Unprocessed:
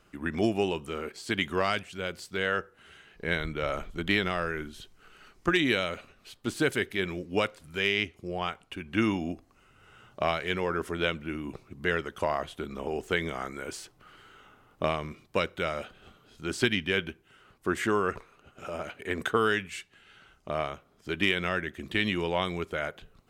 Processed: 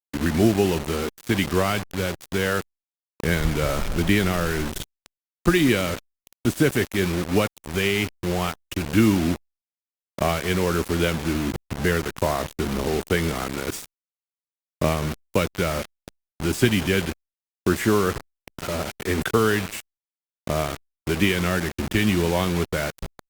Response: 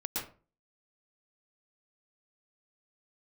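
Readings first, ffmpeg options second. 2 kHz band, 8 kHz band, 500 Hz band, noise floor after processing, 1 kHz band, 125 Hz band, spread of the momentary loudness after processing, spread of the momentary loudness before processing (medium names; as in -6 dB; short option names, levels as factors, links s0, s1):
+3.0 dB, +13.5 dB, +6.5 dB, under -85 dBFS, +4.0 dB, +12.5 dB, 10 LU, 12 LU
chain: -filter_complex "[0:a]asplit=2[s0][s1];[s1]acompressor=threshold=0.0158:ratio=6,volume=1[s2];[s0][s2]amix=inputs=2:normalize=0,bandreject=f=4200:w=5.9,aecho=1:1:185:0.0794,acrossover=split=290|7000[s3][s4][s5];[s5]dynaudnorm=f=390:g=17:m=1.78[s6];[s3][s4][s6]amix=inputs=3:normalize=0,lowshelf=f=320:g=12,acrusher=bits=4:mix=0:aa=0.000001" -ar 48000 -c:a libopus -b:a 48k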